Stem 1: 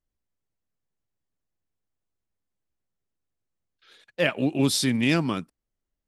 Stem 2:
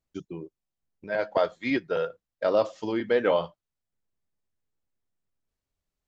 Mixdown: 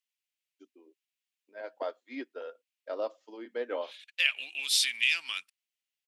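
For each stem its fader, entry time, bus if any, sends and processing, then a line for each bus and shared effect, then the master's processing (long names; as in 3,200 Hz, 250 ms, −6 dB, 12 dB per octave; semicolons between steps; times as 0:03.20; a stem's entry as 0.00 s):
+1.0 dB, 0.00 s, no send, downward compressor, threshold −23 dBFS, peak gain reduction 7 dB; high-pass with resonance 2,600 Hz, resonance Q 2.6
−10.0 dB, 0.45 s, no send, elliptic high-pass filter 250 Hz, stop band 40 dB; expander for the loud parts 1.5 to 1, over −37 dBFS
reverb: not used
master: no processing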